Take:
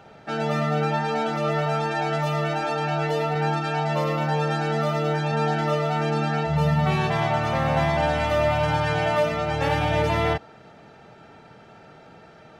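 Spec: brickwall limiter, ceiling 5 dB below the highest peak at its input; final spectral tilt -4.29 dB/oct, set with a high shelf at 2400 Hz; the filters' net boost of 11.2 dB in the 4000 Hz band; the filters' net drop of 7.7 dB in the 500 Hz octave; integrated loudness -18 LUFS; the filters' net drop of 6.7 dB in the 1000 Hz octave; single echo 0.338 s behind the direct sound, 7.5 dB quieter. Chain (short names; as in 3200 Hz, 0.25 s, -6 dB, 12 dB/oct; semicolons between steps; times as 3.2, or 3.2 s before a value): bell 500 Hz -7.5 dB; bell 1000 Hz -8.5 dB; high shelf 2400 Hz +8 dB; bell 4000 Hz +8 dB; limiter -14.5 dBFS; echo 0.338 s -7.5 dB; gain +5.5 dB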